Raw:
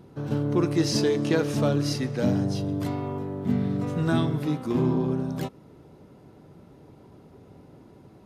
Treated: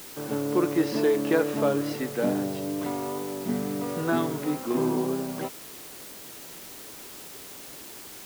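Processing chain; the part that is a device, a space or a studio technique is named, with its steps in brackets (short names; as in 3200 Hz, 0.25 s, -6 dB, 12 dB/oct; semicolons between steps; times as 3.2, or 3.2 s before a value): wax cylinder (BPF 300–2300 Hz; wow and flutter 26 cents; white noise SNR 15 dB); gain +2.5 dB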